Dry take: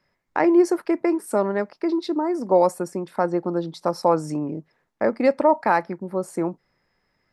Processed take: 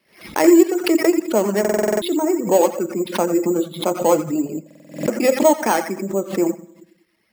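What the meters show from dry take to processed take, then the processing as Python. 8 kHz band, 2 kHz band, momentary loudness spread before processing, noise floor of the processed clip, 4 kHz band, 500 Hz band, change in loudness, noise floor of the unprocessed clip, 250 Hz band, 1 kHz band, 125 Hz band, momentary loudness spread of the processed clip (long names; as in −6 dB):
+14.5 dB, +3.5 dB, 10 LU, −63 dBFS, +11.0 dB, +4.0 dB, +4.0 dB, −72 dBFS, +5.0 dB, +0.5 dB, +1.5 dB, 10 LU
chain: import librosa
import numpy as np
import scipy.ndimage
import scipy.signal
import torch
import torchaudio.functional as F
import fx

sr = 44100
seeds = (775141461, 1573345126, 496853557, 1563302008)

p1 = fx.peak_eq(x, sr, hz=330.0, db=5.5, octaves=1.6)
p2 = 10.0 ** (-17.0 / 20.0) * np.tanh(p1 / 10.0 ** (-17.0 / 20.0))
p3 = p1 + (p2 * librosa.db_to_amplitude(-8.0))
p4 = fx.vibrato(p3, sr, rate_hz=8.3, depth_cents=89.0)
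p5 = fx.high_shelf_res(p4, sr, hz=2200.0, db=11.0, q=1.5)
p6 = fx.echo_banded(p5, sr, ms=85, feedback_pct=40, hz=1800.0, wet_db=-5.0)
p7 = fx.rev_fdn(p6, sr, rt60_s=0.81, lf_ratio=1.35, hf_ratio=0.55, size_ms=28.0, drr_db=7.5)
p8 = np.repeat(scipy.signal.resample_poly(p7, 1, 6), 6)[:len(p7)]
p9 = fx.highpass(p8, sr, hz=170.0, slope=6)
p10 = fx.dereverb_blind(p9, sr, rt60_s=0.62)
p11 = fx.buffer_glitch(p10, sr, at_s=(1.6, 4.66), block=2048, repeats=8)
p12 = fx.pre_swell(p11, sr, db_per_s=140.0)
y = p12 * librosa.db_to_amplitude(-1.0)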